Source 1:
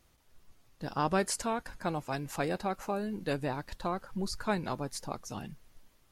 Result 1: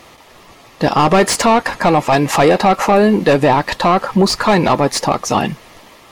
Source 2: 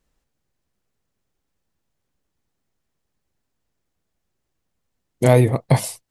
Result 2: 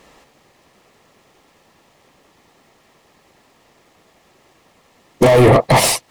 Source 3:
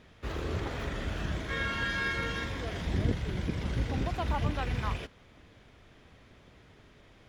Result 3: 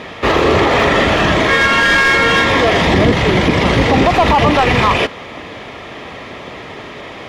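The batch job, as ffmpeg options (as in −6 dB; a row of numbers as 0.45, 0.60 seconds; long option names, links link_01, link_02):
-filter_complex "[0:a]asplit=2[link_01][link_02];[link_02]highpass=frequency=720:poles=1,volume=36dB,asoftclip=type=tanh:threshold=-1dB[link_03];[link_01][link_03]amix=inputs=2:normalize=0,lowpass=frequency=1700:poles=1,volume=-6dB,bandreject=frequency=1500:width=5.7,alimiter=limit=-9dB:level=0:latency=1:release=83,volume=5dB"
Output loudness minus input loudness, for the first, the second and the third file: +21.0, +6.0, +21.5 LU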